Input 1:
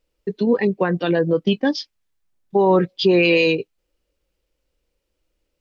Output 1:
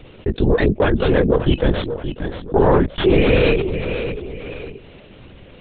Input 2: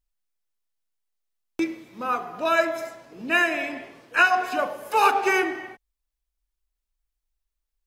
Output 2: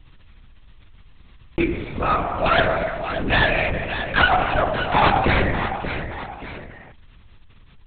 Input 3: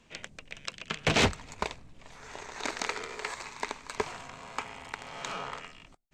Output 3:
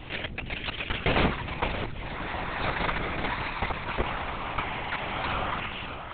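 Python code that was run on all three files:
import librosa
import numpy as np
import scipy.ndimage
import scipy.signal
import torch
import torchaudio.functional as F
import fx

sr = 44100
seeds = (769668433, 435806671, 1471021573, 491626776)

y = fx.tracing_dist(x, sr, depth_ms=0.34)
y = fx.echo_feedback(y, sr, ms=579, feedback_pct=17, wet_db=-18)
y = fx.lpc_vocoder(y, sr, seeds[0], excitation='whisper', order=10)
y = fx.env_flatten(y, sr, amount_pct=50)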